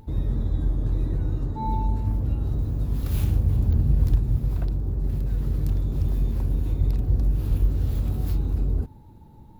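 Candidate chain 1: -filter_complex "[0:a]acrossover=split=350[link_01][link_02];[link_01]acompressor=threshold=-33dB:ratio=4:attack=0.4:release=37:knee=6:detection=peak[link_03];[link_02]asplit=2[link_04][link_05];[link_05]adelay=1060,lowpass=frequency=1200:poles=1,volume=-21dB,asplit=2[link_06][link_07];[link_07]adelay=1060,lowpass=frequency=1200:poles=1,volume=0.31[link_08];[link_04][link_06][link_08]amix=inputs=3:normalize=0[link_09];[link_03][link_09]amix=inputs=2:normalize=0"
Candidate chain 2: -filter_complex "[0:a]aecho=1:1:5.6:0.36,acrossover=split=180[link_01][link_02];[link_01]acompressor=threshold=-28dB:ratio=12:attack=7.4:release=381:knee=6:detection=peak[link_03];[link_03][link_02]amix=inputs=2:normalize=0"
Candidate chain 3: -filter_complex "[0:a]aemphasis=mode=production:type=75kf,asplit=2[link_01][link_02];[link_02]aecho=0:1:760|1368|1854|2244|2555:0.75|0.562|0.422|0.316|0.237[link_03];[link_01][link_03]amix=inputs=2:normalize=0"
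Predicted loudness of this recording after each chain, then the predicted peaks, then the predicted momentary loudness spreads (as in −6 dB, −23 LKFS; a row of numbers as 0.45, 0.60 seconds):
−35.5, −33.0, −22.5 LKFS; −21.0, −17.5, −5.0 dBFS; 3, 3, 6 LU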